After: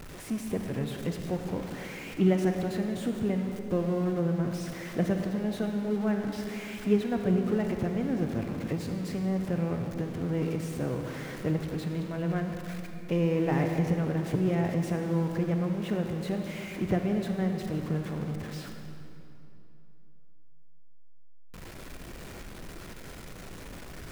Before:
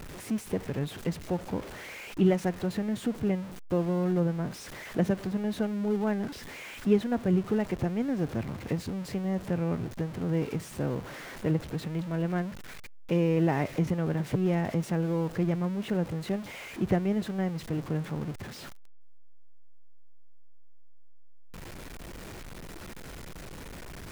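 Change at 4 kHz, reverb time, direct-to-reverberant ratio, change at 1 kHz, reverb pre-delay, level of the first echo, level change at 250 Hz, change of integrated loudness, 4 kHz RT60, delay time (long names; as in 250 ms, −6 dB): −0.5 dB, 2.9 s, 4.0 dB, −0.5 dB, 31 ms, no echo audible, 0.0 dB, 0.0 dB, 2.1 s, no echo audible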